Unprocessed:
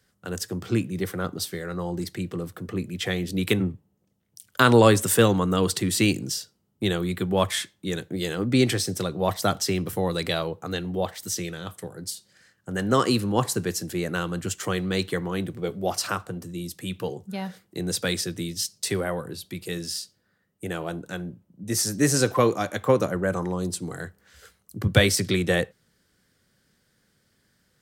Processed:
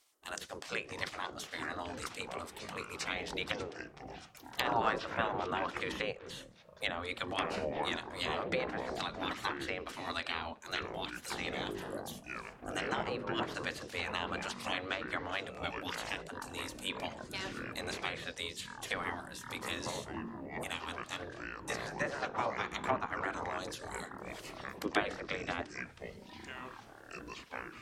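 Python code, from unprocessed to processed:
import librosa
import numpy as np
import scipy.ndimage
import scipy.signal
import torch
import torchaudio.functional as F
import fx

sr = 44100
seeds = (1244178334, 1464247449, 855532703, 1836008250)

y = fx.spec_gate(x, sr, threshold_db=-15, keep='weak')
y = fx.env_lowpass_down(y, sr, base_hz=1200.0, full_db=-29.5)
y = fx.echo_pitch(y, sr, ms=504, semitones=-7, count=3, db_per_echo=-6.0)
y = y * 10.0 ** (1.5 / 20.0)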